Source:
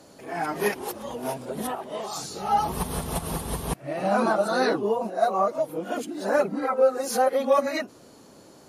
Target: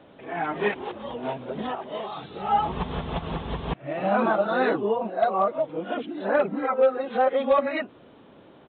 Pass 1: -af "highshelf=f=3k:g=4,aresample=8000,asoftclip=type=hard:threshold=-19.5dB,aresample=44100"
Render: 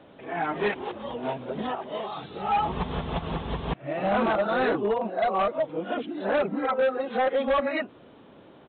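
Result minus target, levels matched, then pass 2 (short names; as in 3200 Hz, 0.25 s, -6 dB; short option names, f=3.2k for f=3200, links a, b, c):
hard clip: distortion +18 dB
-af "highshelf=f=3k:g=4,aresample=8000,asoftclip=type=hard:threshold=-12.5dB,aresample=44100"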